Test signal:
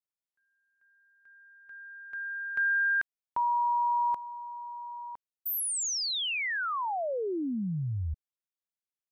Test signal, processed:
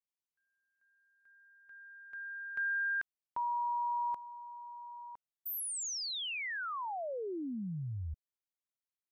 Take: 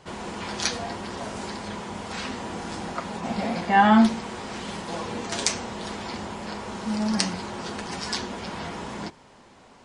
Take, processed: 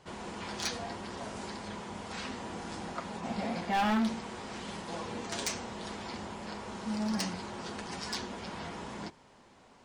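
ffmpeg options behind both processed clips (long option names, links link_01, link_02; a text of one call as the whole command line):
ffmpeg -i in.wav -af "volume=18.5dB,asoftclip=hard,volume=-18.5dB,volume=-7dB" out.wav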